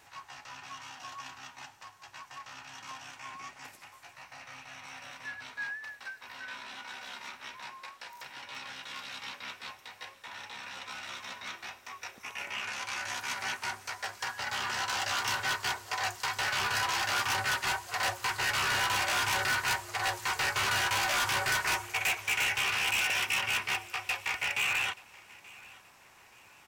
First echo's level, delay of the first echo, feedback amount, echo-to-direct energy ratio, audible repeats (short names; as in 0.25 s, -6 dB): -22.0 dB, 0.879 s, 36%, -21.5 dB, 2